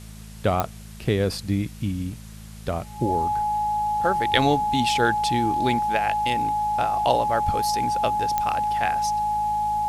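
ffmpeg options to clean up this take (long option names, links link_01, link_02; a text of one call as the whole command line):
ffmpeg -i in.wav -af "adeclick=threshold=4,bandreject=frequency=53.7:width_type=h:width=4,bandreject=frequency=107.4:width_type=h:width=4,bandreject=frequency=161.1:width_type=h:width=4,bandreject=frequency=214.8:width_type=h:width=4,bandreject=frequency=840:width=30,afwtdn=0.004" out.wav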